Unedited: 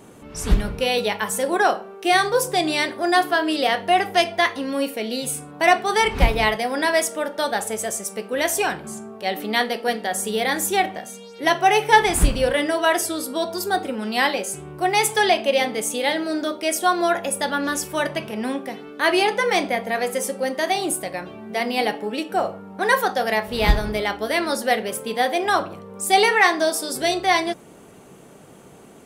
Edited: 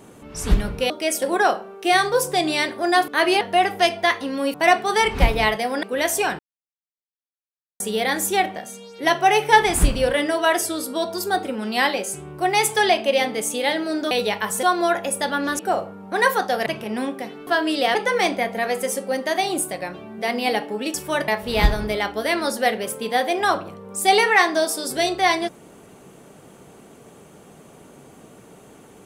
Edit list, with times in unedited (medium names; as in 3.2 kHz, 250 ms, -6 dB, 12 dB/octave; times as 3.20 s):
0.90–1.42 s: swap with 16.51–16.83 s
3.28–3.76 s: swap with 18.94–19.27 s
4.89–5.54 s: delete
6.83–8.23 s: delete
8.79–10.20 s: mute
17.79–18.13 s: swap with 22.26–23.33 s